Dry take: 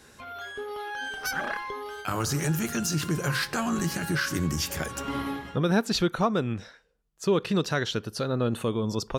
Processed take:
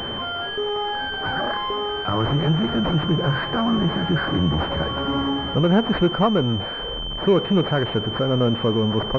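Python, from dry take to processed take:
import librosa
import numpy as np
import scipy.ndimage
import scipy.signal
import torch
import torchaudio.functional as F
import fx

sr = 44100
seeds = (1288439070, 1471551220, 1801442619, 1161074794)

y = x + 0.5 * 10.0 ** (-29.0 / 20.0) * np.sign(x)
y = fx.pwm(y, sr, carrier_hz=3100.0)
y = y * 10.0 ** (5.0 / 20.0)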